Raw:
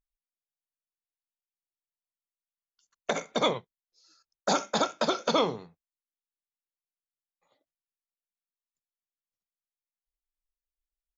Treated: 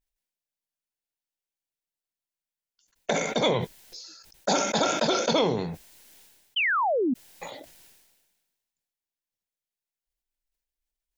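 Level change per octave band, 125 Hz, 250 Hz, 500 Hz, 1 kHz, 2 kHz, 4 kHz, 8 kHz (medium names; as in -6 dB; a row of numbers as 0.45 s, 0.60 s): +8.5 dB, +6.0 dB, +4.5 dB, +3.5 dB, +9.0 dB, +4.5 dB, no reading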